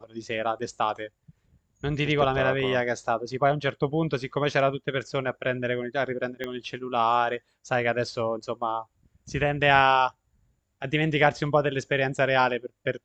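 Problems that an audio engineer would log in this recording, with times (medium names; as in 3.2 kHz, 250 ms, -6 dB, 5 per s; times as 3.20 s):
6.44 s: pop -19 dBFS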